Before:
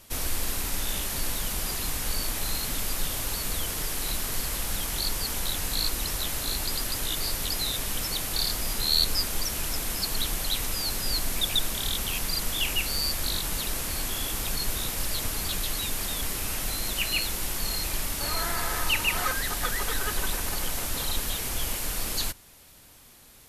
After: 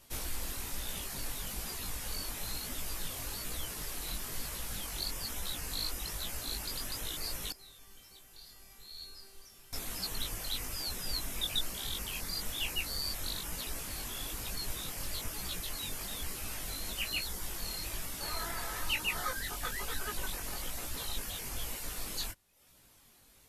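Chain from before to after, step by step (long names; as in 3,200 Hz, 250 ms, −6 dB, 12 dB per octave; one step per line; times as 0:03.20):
reverb reduction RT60 0.72 s
chorus effect 1.1 Hz, delay 16 ms, depth 6.3 ms
0:07.52–0:09.73: tuned comb filter 390 Hz, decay 0.86 s, mix 90%
level −4 dB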